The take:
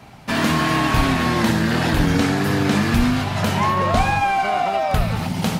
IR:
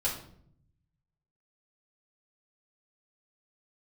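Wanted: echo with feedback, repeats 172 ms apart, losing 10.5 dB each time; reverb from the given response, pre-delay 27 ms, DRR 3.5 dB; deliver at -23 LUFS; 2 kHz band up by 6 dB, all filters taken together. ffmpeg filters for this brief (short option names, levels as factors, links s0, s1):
-filter_complex "[0:a]equalizer=f=2000:t=o:g=7.5,aecho=1:1:172|344|516:0.299|0.0896|0.0269,asplit=2[s0][s1];[1:a]atrim=start_sample=2205,adelay=27[s2];[s1][s2]afir=irnorm=-1:irlink=0,volume=0.335[s3];[s0][s3]amix=inputs=2:normalize=0,volume=0.376"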